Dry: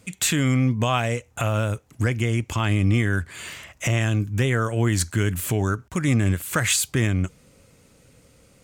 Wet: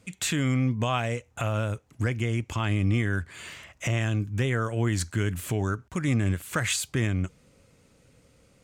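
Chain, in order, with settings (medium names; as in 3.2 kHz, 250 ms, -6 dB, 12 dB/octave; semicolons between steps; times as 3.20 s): treble shelf 10 kHz -9 dB; trim -4.5 dB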